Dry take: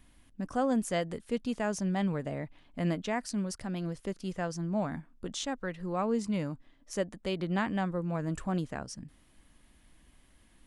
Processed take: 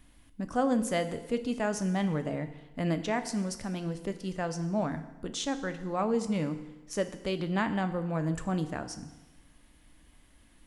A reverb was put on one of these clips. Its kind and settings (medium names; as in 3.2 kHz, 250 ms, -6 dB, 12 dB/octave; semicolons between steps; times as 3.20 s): FDN reverb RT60 1.1 s, low-frequency decay 0.95×, high-frequency decay 0.95×, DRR 8.5 dB; trim +1.5 dB